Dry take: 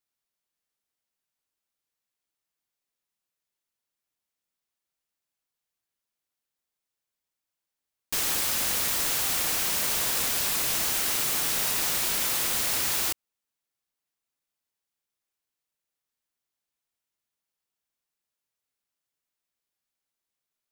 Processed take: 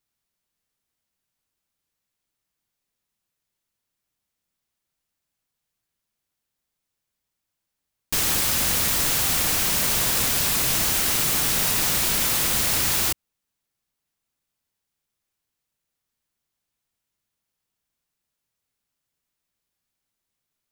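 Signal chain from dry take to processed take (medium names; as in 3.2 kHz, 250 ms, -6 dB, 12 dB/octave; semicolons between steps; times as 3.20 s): tone controls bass +8 dB, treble 0 dB; trim +4.5 dB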